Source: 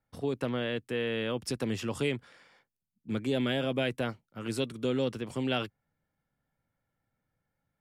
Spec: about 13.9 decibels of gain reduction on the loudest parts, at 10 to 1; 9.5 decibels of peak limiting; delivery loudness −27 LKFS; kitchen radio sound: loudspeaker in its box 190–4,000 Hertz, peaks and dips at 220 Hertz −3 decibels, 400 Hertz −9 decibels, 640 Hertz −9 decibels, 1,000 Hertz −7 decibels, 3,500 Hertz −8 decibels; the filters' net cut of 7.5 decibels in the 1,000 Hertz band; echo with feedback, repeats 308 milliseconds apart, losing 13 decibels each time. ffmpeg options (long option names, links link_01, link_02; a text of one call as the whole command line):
ffmpeg -i in.wav -af "equalizer=frequency=1000:width_type=o:gain=-5.5,acompressor=threshold=-40dB:ratio=10,alimiter=level_in=14.5dB:limit=-24dB:level=0:latency=1,volume=-14.5dB,highpass=190,equalizer=frequency=220:width_type=q:width=4:gain=-3,equalizer=frequency=400:width_type=q:width=4:gain=-9,equalizer=frequency=640:width_type=q:width=4:gain=-9,equalizer=frequency=1000:width_type=q:width=4:gain=-7,equalizer=frequency=3500:width_type=q:width=4:gain=-8,lowpass=frequency=4000:width=0.5412,lowpass=frequency=4000:width=1.3066,aecho=1:1:308|616|924:0.224|0.0493|0.0108,volume=26.5dB" out.wav